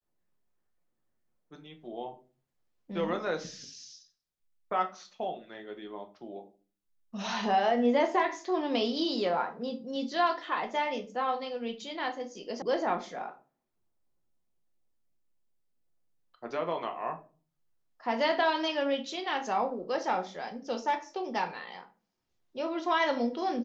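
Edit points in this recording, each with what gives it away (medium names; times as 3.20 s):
12.62 s: sound stops dead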